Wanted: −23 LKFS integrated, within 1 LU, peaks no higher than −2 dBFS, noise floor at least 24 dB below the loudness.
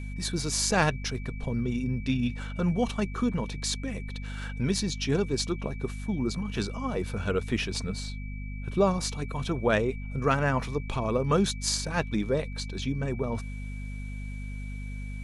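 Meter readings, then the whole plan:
mains hum 50 Hz; hum harmonics up to 250 Hz; level of the hum −34 dBFS; interfering tone 2,300 Hz; level of the tone −47 dBFS; integrated loudness −30.0 LKFS; sample peak −9.5 dBFS; target loudness −23.0 LKFS
→ hum removal 50 Hz, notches 5
notch filter 2,300 Hz, Q 30
level +7 dB

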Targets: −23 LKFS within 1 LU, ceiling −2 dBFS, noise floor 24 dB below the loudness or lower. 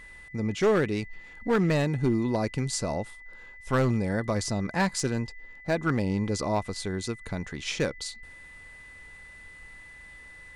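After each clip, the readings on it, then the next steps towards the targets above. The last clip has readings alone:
share of clipped samples 0.9%; peaks flattened at −18.0 dBFS; interfering tone 2,000 Hz; level of the tone −46 dBFS; integrated loudness −28.5 LKFS; sample peak −18.0 dBFS; target loudness −23.0 LKFS
→ clipped peaks rebuilt −18 dBFS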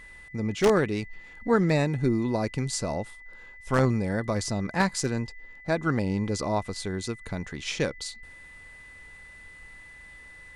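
share of clipped samples 0.0%; interfering tone 2,000 Hz; level of the tone −46 dBFS
→ notch filter 2,000 Hz, Q 30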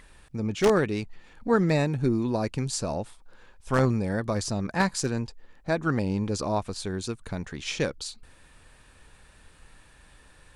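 interfering tone none found; integrated loudness −27.5 LKFS; sample peak −9.0 dBFS; target loudness −23.0 LKFS
→ level +4.5 dB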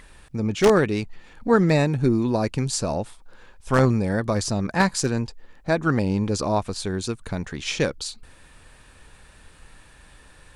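integrated loudness −23.0 LKFS; sample peak −4.5 dBFS; background noise floor −51 dBFS

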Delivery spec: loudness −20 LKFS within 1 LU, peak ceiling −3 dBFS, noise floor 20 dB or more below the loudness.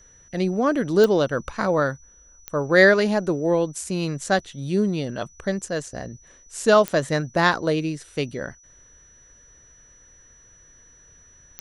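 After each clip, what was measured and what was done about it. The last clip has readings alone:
number of clicks 4; interfering tone 5,900 Hz; level of the tone −51 dBFS; integrated loudness −22.0 LKFS; sample peak −3.0 dBFS; target loudness −20.0 LKFS
→ click removal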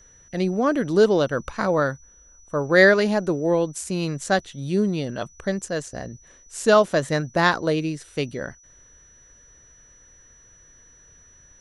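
number of clicks 0; interfering tone 5,900 Hz; level of the tone −51 dBFS
→ notch filter 5,900 Hz, Q 30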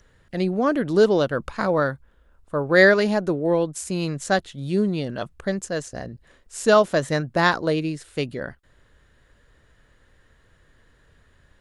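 interfering tone none found; integrated loudness −22.0 LKFS; sample peak −3.0 dBFS; target loudness −20.0 LKFS
→ level +2 dB
brickwall limiter −3 dBFS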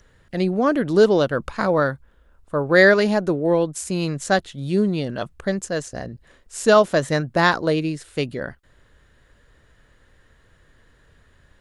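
integrated loudness −20.0 LKFS; sample peak −3.0 dBFS; background noise floor −57 dBFS

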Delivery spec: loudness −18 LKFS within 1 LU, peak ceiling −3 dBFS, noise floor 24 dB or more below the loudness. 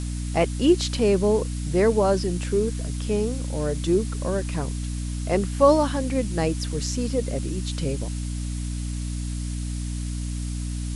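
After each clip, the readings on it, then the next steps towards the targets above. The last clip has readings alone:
mains hum 60 Hz; hum harmonics up to 300 Hz; level of the hum −26 dBFS; background noise floor −29 dBFS; target noise floor −49 dBFS; integrated loudness −25.0 LKFS; sample peak −6.0 dBFS; target loudness −18.0 LKFS
→ hum removal 60 Hz, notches 5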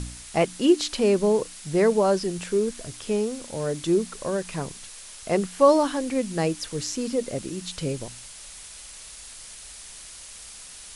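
mains hum none found; background noise floor −43 dBFS; target noise floor −49 dBFS
→ noise reduction from a noise print 6 dB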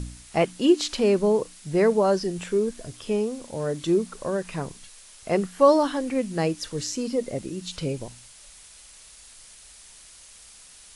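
background noise floor −49 dBFS; integrated loudness −24.5 LKFS; sample peak −6.5 dBFS; target loudness −18.0 LKFS
→ level +6.5 dB
brickwall limiter −3 dBFS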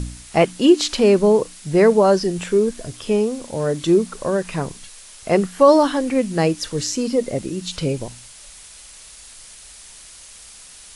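integrated loudness −18.5 LKFS; sample peak −3.0 dBFS; background noise floor −43 dBFS

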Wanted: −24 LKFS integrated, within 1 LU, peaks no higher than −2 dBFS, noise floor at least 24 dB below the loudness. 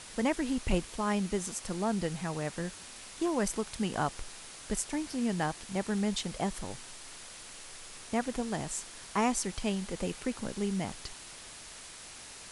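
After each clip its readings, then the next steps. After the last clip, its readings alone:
background noise floor −48 dBFS; target noise floor −58 dBFS; integrated loudness −33.5 LKFS; sample peak −14.0 dBFS; target loudness −24.0 LKFS
→ noise reduction from a noise print 10 dB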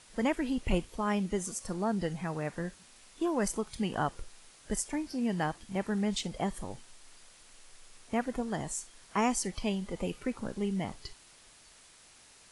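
background noise floor −58 dBFS; integrated loudness −33.5 LKFS; sample peak −14.0 dBFS; target loudness −24.0 LKFS
→ level +9.5 dB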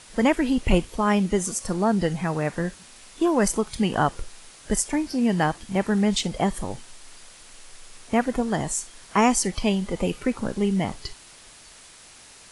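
integrated loudness −24.0 LKFS; sample peak −4.5 dBFS; background noise floor −48 dBFS

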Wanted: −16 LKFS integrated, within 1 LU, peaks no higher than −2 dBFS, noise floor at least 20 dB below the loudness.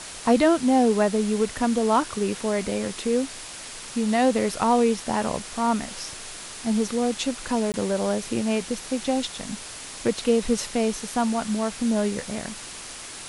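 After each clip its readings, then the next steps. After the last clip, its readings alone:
number of dropouts 1; longest dropout 19 ms; background noise floor −39 dBFS; target noise floor −45 dBFS; integrated loudness −24.5 LKFS; sample peak −7.0 dBFS; target loudness −16.0 LKFS
→ repair the gap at 0:07.72, 19 ms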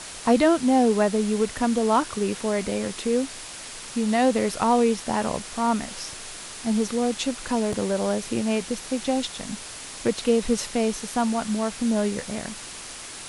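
number of dropouts 0; background noise floor −39 dBFS; target noise floor −45 dBFS
→ broadband denoise 6 dB, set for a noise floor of −39 dBFS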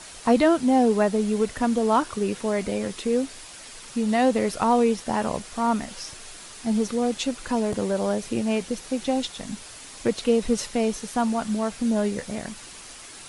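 background noise floor −43 dBFS; target noise floor −45 dBFS
→ broadband denoise 6 dB, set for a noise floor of −43 dBFS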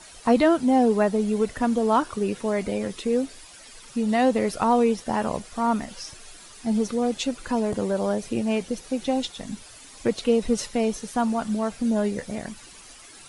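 background noise floor −47 dBFS; integrated loudness −24.5 LKFS; sample peak −7.5 dBFS; target loudness −16.0 LKFS
→ level +8.5 dB
brickwall limiter −2 dBFS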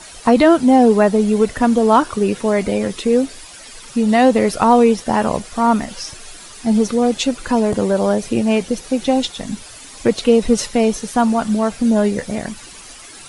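integrated loudness −16.0 LKFS; sample peak −2.0 dBFS; background noise floor −38 dBFS

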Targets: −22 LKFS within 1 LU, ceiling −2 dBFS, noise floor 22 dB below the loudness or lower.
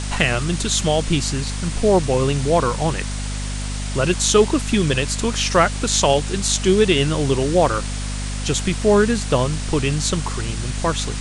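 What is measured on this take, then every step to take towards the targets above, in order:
mains hum 50 Hz; hum harmonics up to 250 Hz; level of the hum −24 dBFS; background noise floor −26 dBFS; target noise floor −42 dBFS; integrated loudness −19.5 LKFS; sample peak −1.5 dBFS; target loudness −22.0 LKFS
→ hum removal 50 Hz, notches 5
broadband denoise 16 dB, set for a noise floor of −26 dBFS
level −2.5 dB

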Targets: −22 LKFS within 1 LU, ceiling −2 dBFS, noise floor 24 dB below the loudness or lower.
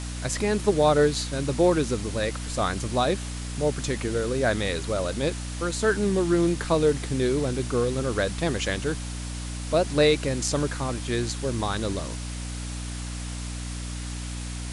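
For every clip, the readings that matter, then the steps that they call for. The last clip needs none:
mains hum 60 Hz; hum harmonics up to 300 Hz; level of the hum −31 dBFS; background noise floor −33 dBFS; target noise floor −50 dBFS; integrated loudness −26.0 LKFS; sample peak −8.5 dBFS; target loudness −22.0 LKFS
→ mains-hum notches 60/120/180/240/300 Hz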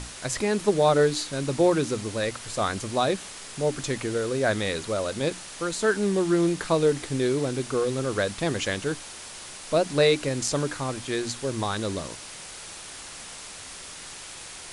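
mains hum none found; background noise floor −41 dBFS; target noise floor −50 dBFS
→ broadband denoise 9 dB, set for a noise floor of −41 dBFS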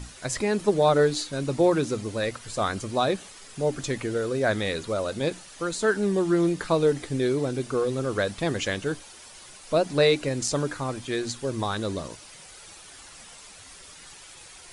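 background noise floor −47 dBFS; target noise floor −50 dBFS
→ broadband denoise 6 dB, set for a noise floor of −47 dBFS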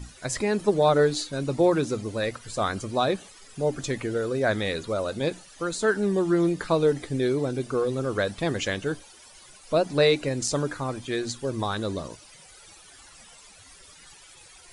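background noise floor −51 dBFS; integrated loudness −26.0 LKFS; sample peak −9.0 dBFS; target loudness −22.0 LKFS
→ level +4 dB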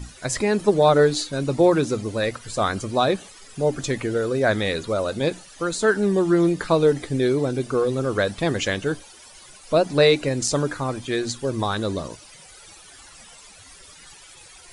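integrated loudness −22.0 LKFS; sample peak −5.0 dBFS; background noise floor −47 dBFS

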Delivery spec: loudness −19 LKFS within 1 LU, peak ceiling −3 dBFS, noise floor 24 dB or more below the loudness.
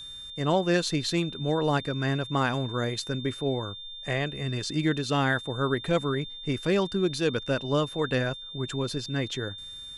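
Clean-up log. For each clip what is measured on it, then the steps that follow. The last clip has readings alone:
interfering tone 3,600 Hz; level of the tone −39 dBFS; integrated loudness −28.0 LKFS; sample peak −11.0 dBFS; target loudness −19.0 LKFS
→ notch filter 3,600 Hz, Q 30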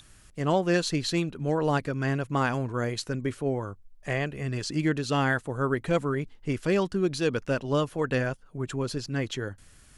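interfering tone none found; integrated loudness −28.5 LKFS; sample peak −11.5 dBFS; target loudness −19.0 LKFS
→ level +9.5 dB
brickwall limiter −3 dBFS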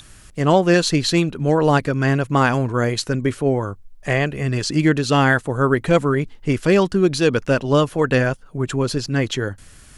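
integrated loudness −19.0 LKFS; sample peak −3.0 dBFS; background noise floor −45 dBFS

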